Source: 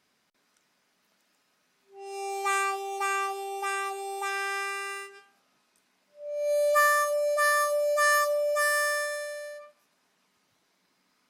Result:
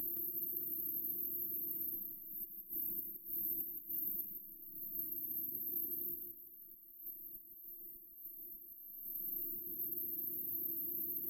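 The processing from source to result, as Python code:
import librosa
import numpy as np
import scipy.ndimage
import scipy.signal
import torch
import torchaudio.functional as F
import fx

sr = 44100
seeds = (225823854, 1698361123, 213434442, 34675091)

p1 = fx.bin_compress(x, sr, power=0.2)
p2 = fx.dereverb_blind(p1, sr, rt60_s=1.4)
p3 = fx.over_compress(p2, sr, threshold_db=-32.0, ratio=-0.5)
p4 = fx.brickwall_bandstop(p3, sr, low_hz=340.0, high_hz=12000.0)
p5 = p4 + fx.echo_feedback(p4, sr, ms=168, feedback_pct=24, wet_db=-5.5, dry=0)
y = p5 * 10.0 ** (8.5 / 20.0)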